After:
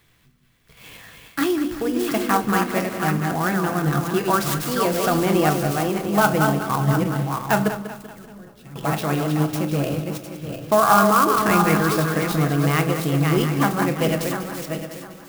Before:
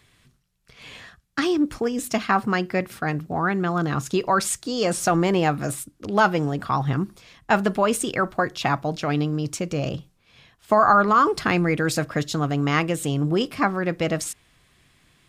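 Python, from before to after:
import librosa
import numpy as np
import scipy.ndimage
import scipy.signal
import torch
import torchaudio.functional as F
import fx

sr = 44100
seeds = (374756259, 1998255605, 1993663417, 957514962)

y = fx.reverse_delay_fb(x, sr, ms=352, feedback_pct=48, wet_db=-4.0)
y = fx.tone_stack(y, sr, knobs='10-0-1', at=(7.68, 8.76))
y = fx.echo_thinned(y, sr, ms=193, feedback_pct=48, hz=160.0, wet_db=-11.0)
y = fx.room_shoebox(y, sr, seeds[0], volume_m3=260.0, walls='furnished', distance_m=0.68)
y = fx.clock_jitter(y, sr, seeds[1], jitter_ms=0.035)
y = y * librosa.db_to_amplitude(-1.0)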